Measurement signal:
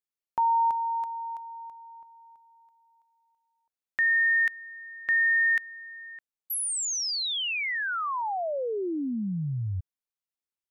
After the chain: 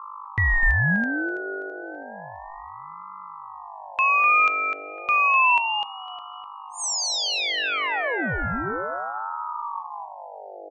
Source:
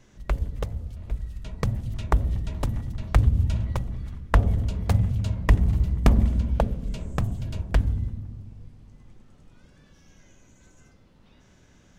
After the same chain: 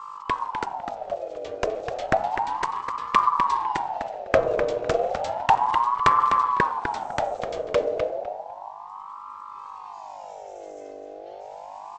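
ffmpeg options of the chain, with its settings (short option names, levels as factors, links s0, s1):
-filter_complex "[0:a]bandreject=f=250.1:t=h:w=4,bandreject=f=500.2:t=h:w=4,bandreject=f=750.3:t=h:w=4,bandreject=f=1000.4:t=h:w=4,bandreject=f=1250.5:t=h:w=4,bandreject=f=1500.6:t=h:w=4,bandreject=f=1750.7:t=h:w=4,bandreject=f=2000.8:t=h:w=4,bandreject=f=2250.9:t=h:w=4,bandreject=f=2501:t=h:w=4,acrossover=split=480[s0][s1];[s1]acontrast=72[s2];[s0][s2]amix=inputs=2:normalize=0,aresample=16000,aresample=44100,aeval=exprs='val(0)+0.02*(sin(2*PI*50*n/s)+sin(2*PI*2*50*n/s)/2+sin(2*PI*3*50*n/s)/3+sin(2*PI*4*50*n/s)/4+sin(2*PI*5*50*n/s)/5)':c=same,asplit=2[s3][s4];[s4]adelay=252,lowpass=f=4200:p=1,volume=0.501,asplit=2[s5][s6];[s6]adelay=252,lowpass=f=4200:p=1,volume=0.2,asplit=2[s7][s8];[s8]adelay=252,lowpass=f=4200:p=1,volume=0.2[s9];[s5][s7][s9]amix=inputs=3:normalize=0[s10];[s3][s10]amix=inputs=2:normalize=0,aeval=exprs='val(0)*sin(2*PI*820*n/s+820*0.35/0.32*sin(2*PI*0.32*n/s))':c=same"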